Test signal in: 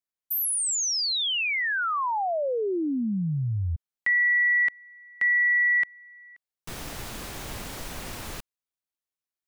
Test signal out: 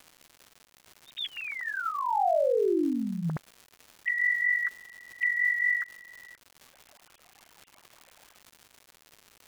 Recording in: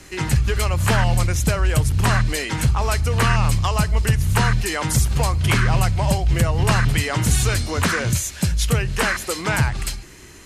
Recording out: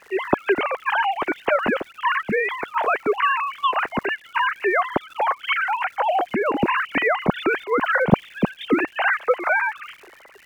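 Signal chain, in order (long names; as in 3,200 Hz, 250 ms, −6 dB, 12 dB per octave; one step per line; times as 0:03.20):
three sine waves on the formant tracks
high-shelf EQ 2,900 Hz −7 dB
surface crackle 240 per second −36 dBFS
level −3 dB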